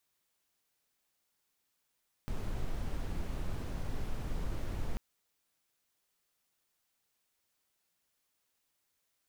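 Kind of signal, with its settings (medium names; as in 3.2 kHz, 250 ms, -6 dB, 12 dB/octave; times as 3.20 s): noise brown, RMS -34.5 dBFS 2.69 s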